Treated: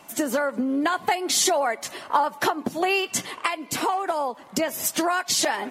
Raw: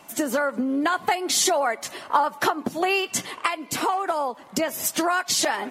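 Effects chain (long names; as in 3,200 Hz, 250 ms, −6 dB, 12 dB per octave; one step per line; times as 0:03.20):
dynamic equaliser 1,300 Hz, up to −4 dB, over −38 dBFS, Q 4.5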